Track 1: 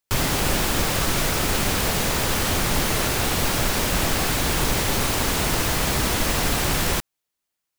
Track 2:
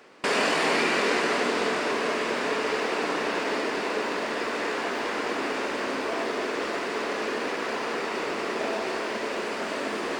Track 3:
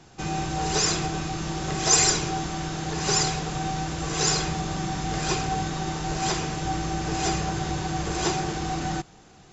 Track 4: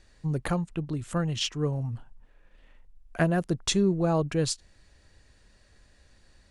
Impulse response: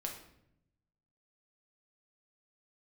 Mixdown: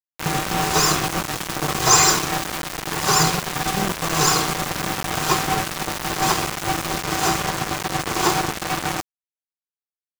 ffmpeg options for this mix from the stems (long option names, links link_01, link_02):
-filter_complex "[0:a]volume=-16.5dB[link_01];[1:a]alimiter=limit=-18.5dB:level=0:latency=1,adelay=2200,volume=-17dB[link_02];[2:a]highpass=frequency=81:width=0.5412,highpass=frequency=81:width=1.3066,equalizer=frequency=1100:width_type=o:width=0.79:gain=10.5,volume=-3.5dB,asplit=2[link_03][link_04];[link_04]volume=-5dB[link_05];[3:a]acrossover=split=240[link_06][link_07];[link_07]acompressor=threshold=-32dB:ratio=6[link_08];[link_06][link_08]amix=inputs=2:normalize=0,volume=-3.5dB[link_09];[4:a]atrim=start_sample=2205[link_10];[link_05][link_10]afir=irnorm=-1:irlink=0[link_11];[link_01][link_02][link_03][link_09][link_11]amix=inputs=5:normalize=0,acontrast=28,aeval=exprs='val(0)*gte(abs(val(0)),0.126)':channel_layout=same"